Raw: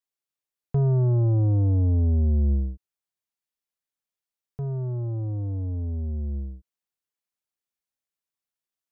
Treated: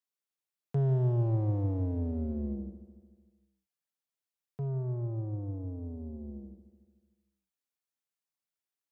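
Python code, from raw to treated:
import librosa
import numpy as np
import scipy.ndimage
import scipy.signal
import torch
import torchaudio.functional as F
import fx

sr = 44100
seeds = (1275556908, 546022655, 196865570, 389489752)

p1 = fx.tracing_dist(x, sr, depth_ms=0.061)
p2 = scipy.signal.sosfilt(scipy.signal.butter(4, 110.0, 'highpass', fs=sr, output='sos'), p1)
p3 = np.clip(p2, -10.0 ** (-27.0 / 20.0), 10.0 ** (-27.0 / 20.0))
p4 = p2 + (p3 * 10.0 ** (-5.0 / 20.0))
p5 = fx.echo_feedback(p4, sr, ms=149, feedback_pct=56, wet_db=-14.0)
y = p5 * 10.0 ** (-7.5 / 20.0)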